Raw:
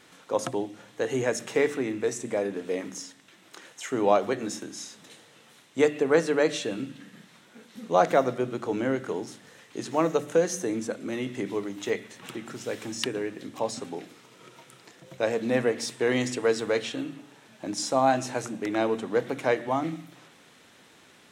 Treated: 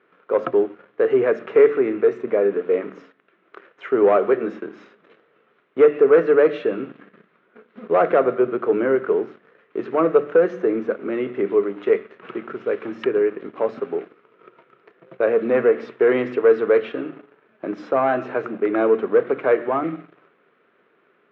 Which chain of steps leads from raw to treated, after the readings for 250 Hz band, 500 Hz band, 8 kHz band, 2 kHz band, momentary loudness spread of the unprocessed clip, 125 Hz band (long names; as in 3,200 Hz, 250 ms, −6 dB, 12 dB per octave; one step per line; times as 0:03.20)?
+4.5 dB, +9.5 dB, below −30 dB, +3.5 dB, 16 LU, −2.0 dB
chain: leveller curve on the samples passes 2
loudspeaker in its box 230–2,200 Hz, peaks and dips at 270 Hz −5 dB, 410 Hz +8 dB, 850 Hz −8 dB, 1,300 Hz +5 dB, 1,900 Hz −4 dB